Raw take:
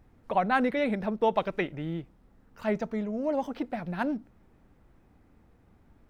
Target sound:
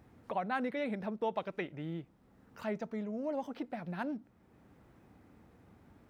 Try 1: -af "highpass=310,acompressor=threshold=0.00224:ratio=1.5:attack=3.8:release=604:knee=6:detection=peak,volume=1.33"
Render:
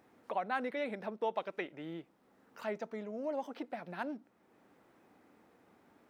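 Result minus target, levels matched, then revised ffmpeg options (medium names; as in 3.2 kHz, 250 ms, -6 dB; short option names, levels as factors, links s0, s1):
125 Hz band -7.5 dB
-af "highpass=88,acompressor=threshold=0.00224:ratio=1.5:attack=3.8:release=604:knee=6:detection=peak,volume=1.33"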